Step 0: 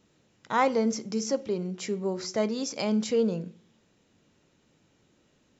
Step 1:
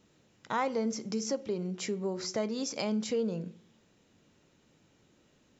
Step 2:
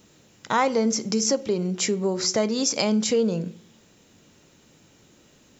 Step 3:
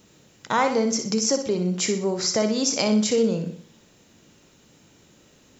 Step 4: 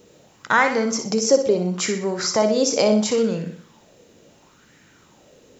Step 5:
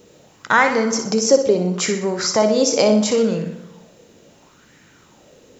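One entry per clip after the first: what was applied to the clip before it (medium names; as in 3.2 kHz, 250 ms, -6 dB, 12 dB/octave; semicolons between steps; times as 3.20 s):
compression 2:1, threshold -32 dBFS, peak gain reduction 8 dB
treble shelf 6.3 kHz +10.5 dB; trim +9 dB
flutter echo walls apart 10.5 m, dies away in 0.46 s
sweeping bell 0.73 Hz 460–1800 Hz +13 dB
reverberation RT60 1.2 s, pre-delay 112 ms, DRR 16.5 dB; trim +2.5 dB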